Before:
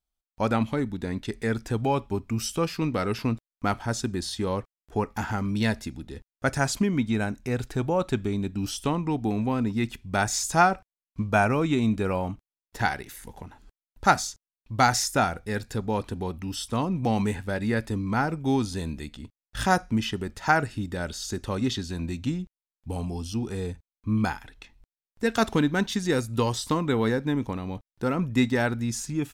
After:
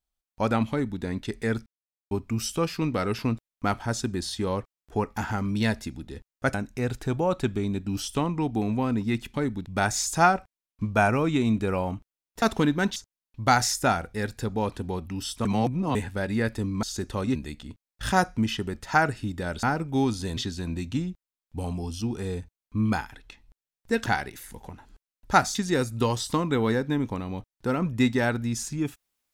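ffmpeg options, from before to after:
-filter_complex "[0:a]asplit=16[s0][s1][s2][s3][s4][s5][s6][s7][s8][s9][s10][s11][s12][s13][s14][s15];[s0]atrim=end=1.66,asetpts=PTS-STARTPTS,afade=t=out:st=1.656:d=0.004:c=hsin[s16];[s1]atrim=start=1.66:end=2.11,asetpts=PTS-STARTPTS,volume=0[s17];[s2]atrim=start=2.11:end=6.542,asetpts=PTS-STARTPTS,afade=t=in:d=0.004:c=hsin[s18];[s3]atrim=start=7.228:end=10.032[s19];[s4]atrim=start=0.698:end=1.022[s20];[s5]atrim=start=10.028:end=12.792[s21];[s6]atrim=start=25.378:end=25.922[s22];[s7]atrim=start=14.278:end=16.772[s23];[s8]atrim=start=16.768:end=17.272,asetpts=PTS-STARTPTS,areverse[s24];[s9]atrim=start=17.268:end=18.152[s25];[s10]atrim=start=21.168:end=21.692[s26];[s11]atrim=start=18.888:end=21.172[s27];[s12]atrim=start=18.148:end=18.892[s28];[s13]atrim=start=21.688:end=25.382[s29];[s14]atrim=start=12.788:end=14.282[s30];[s15]atrim=start=25.918[s31];[s16][s17][s18]concat=n=3:v=0:a=1[s32];[s32][s19]acrossfade=d=0.004:c1=hsin:c2=hsin[s33];[s33][s20]acrossfade=d=0.004:c1=hsin:c2=hsin[s34];[s34][s21]acrossfade=d=0.004:c1=hsin:c2=hsin[s35];[s35][s22]acrossfade=d=0.004:c1=hsin:c2=hsin[s36];[s36][s23]acrossfade=d=0.004:c1=hsin:c2=hsin[s37];[s37][s24]acrossfade=d=0.004:c1=hsin:c2=hsin[s38];[s38][s25]acrossfade=d=0.004:c1=hsin:c2=hsin[s39];[s39][s26]acrossfade=d=0.004:c1=hsin:c2=hsin[s40];[s40][s27]acrossfade=d=0.004:c1=hsin:c2=hsin[s41];[s41][s28]acrossfade=d=0.004:c1=hsin:c2=hsin[s42];[s42][s29]acrossfade=d=0.004:c1=hsin:c2=hsin[s43];[s43][s30]acrossfade=d=0.004:c1=hsin:c2=hsin[s44];[s44][s31]acrossfade=d=0.004:c1=hsin:c2=hsin"

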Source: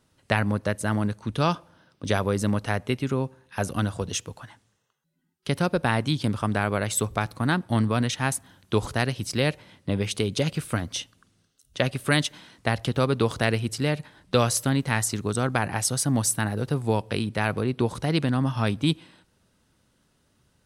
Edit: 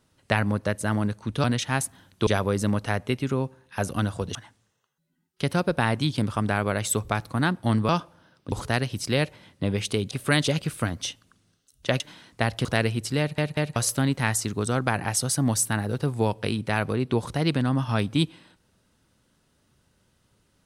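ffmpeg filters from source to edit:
-filter_complex "[0:a]asplit=13[s0][s1][s2][s3][s4][s5][s6][s7][s8][s9][s10][s11][s12];[s0]atrim=end=1.442[s13];[s1]atrim=start=7.948:end=8.782[s14];[s2]atrim=start=2.068:end=4.152[s15];[s3]atrim=start=4.408:end=7.952[s16];[s4]atrim=start=1.438:end=2.072[s17];[s5]atrim=start=8.778:end=10.372[s18];[s6]atrim=start=11.908:end=12.262[s19];[s7]atrim=start=10.368:end=11.912[s20];[s8]atrim=start=12.258:end=12.912[s21];[s9]atrim=start=13.328:end=14.062[s22];[s10]atrim=start=13.868:end=14.062[s23];[s11]atrim=start=13.868:end=14.062[s24];[s12]atrim=start=14.438[s25];[s13][s14]acrossfade=d=0.004:c1=hsin:c2=hsin[s26];[s26][s15]acrossfade=d=0.004:c1=hsin:c2=hsin[s27];[s27][s16]acrossfade=d=0.004:c1=hsin:c2=hsin[s28];[s28][s17]acrossfade=d=0.004:c1=hsin:c2=hsin[s29];[s29][s18]acrossfade=d=0.004:c1=hsin:c2=hsin[s30];[s30][s19]acrossfade=d=0.004:c1=hsin:c2=hsin[s31];[s31][s20]acrossfade=d=0.004:c1=hsin:c2=hsin[s32];[s32][s21]acrossfade=d=0.004:c1=hsin:c2=hsin[s33];[s33][s22]acrossfade=d=0.004:c1=hsin:c2=hsin[s34];[s34][s23]acrossfade=d=0.004:c1=hsin:c2=hsin[s35];[s35][s24]acrossfade=d=0.004:c1=hsin:c2=hsin[s36];[s36][s25]acrossfade=d=0.004:c1=hsin:c2=hsin"

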